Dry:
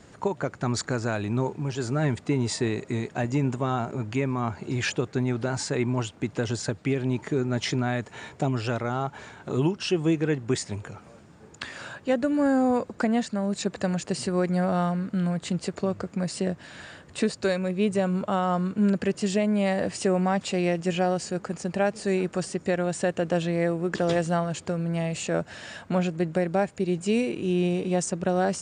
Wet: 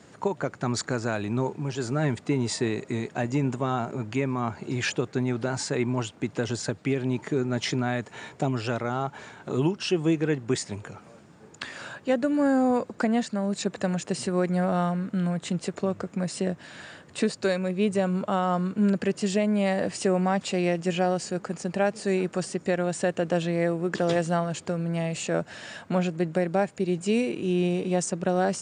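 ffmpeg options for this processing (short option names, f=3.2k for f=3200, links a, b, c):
-filter_complex "[0:a]asettb=1/sr,asplit=3[a][b][c];[a]atrim=end=13.644[d];[b]atrim=start=13.64:end=16.59,asetpts=PTS-STARTPTS,afade=t=in:d=0.004:c=qsin,afade=t=out:st=2.946:d=0.004:c=qsin,bandreject=f=4.6k:w=12[e];[c]atrim=start=16.586[f];[d][e]acrossfade=d=0.004:c1=hsin:c2=qsin[g];[g][f]acrossfade=d=0.004:c1=qsin:c2=hsin,highpass=110"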